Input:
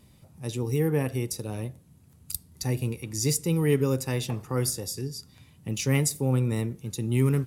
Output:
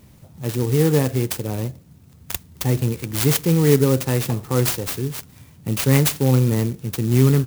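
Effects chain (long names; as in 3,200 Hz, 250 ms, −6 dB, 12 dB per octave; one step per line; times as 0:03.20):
converter with an unsteady clock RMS 0.075 ms
level +8 dB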